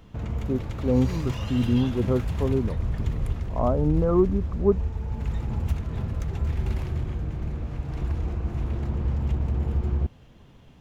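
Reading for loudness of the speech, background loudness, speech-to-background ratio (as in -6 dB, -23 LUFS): -25.5 LUFS, -29.5 LUFS, 4.0 dB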